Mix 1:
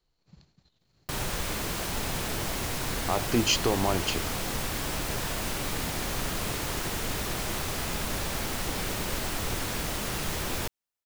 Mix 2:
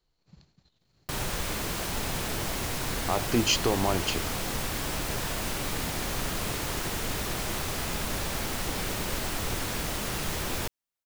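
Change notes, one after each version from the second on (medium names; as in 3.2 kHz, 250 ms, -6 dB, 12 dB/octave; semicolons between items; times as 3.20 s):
no change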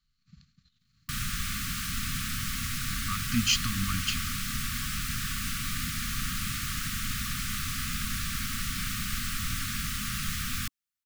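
master: add brick-wall FIR band-stop 270–1100 Hz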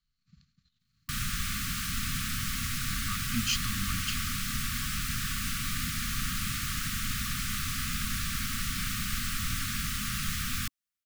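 speech -5.0 dB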